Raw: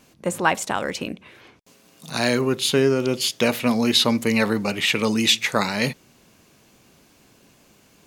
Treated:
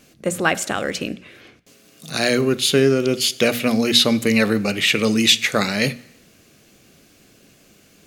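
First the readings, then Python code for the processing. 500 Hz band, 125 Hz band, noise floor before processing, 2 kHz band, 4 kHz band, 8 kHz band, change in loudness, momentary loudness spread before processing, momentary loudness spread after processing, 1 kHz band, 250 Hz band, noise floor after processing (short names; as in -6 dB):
+3.0 dB, +2.5 dB, -56 dBFS, +3.0 dB, +3.5 dB, +3.5 dB, +3.0 dB, 10 LU, 12 LU, -1.5 dB, +2.5 dB, -54 dBFS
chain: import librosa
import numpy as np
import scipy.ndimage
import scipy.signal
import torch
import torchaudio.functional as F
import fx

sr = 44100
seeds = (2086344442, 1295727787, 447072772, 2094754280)

y = fx.peak_eq(x, sr, hz=940.0, db=-13.0, octaves=0.38)
y = fx.hum_notches(y, sr, base_hz=60, count=4)
y = fx.rev_plate(y, sr, seeds[0], rt60_s=0.87, hf_ratio=0.95, predelay_ms=0, drr_db=17.5)
y = y * 10.0 ** (3.5 / 20.0)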